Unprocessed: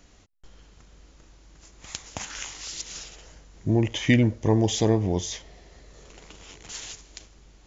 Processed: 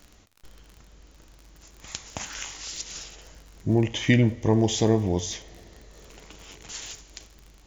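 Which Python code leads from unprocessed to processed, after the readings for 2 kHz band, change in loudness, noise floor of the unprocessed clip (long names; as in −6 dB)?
0.0 dB, 0.0 dB, −55 dBFS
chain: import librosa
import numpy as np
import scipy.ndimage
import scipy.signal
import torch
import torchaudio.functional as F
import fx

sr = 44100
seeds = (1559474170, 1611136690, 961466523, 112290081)

y = fx.dmg_crackle(x, sr, seeds[0], per_s=45.0, level_db=-37.0)
y = fx.rev_double_slope(y, sr, seeds[1], early_s=0.44, late_s=2.8, knee_db=-18, drr_db=13.5)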